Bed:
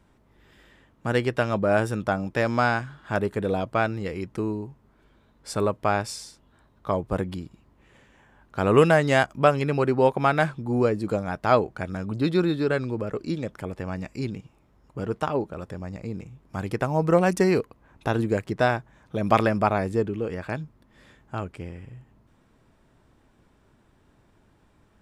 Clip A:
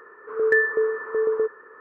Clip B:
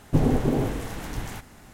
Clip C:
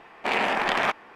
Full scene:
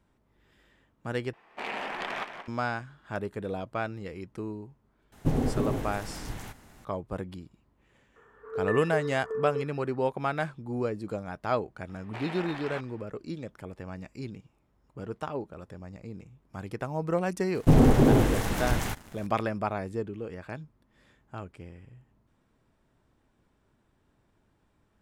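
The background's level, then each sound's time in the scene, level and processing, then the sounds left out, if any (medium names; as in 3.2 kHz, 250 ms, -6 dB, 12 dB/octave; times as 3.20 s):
bed -8.5 dB
1.33 s: replace with C -11 dB + modulated delay 177 ms, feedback 41%, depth 163 cents, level -9 dB
5.12 s: add B -5.5 dB
8.16 s: add A -12 dB + comb 4.3 ms, depth 41%
11.89 s: add C -11 dB + peak limiter -18 dBFS
17.54 s: add B -2.5 dB + waveshaping leveller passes 2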